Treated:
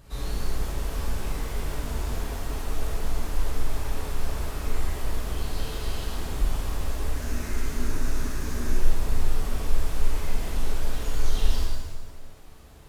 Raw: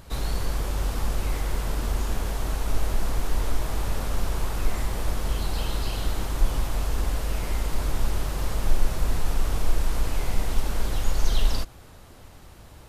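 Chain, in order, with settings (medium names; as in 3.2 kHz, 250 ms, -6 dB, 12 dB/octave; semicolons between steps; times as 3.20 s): 7.15–8.77 s: graphic EQ with 31 bands 250 Hz +10 dB, 500 Hz -6 dB, 800 Hz -5 dB, 1.6 kHz +7 dB, 3.15 kHz -6 dB, 6.3 kHz +6 dB; pitch-shifted reverb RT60 1.2 s, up +7 st, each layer -8 dB, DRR -3.5 dB; trim -8.5 dB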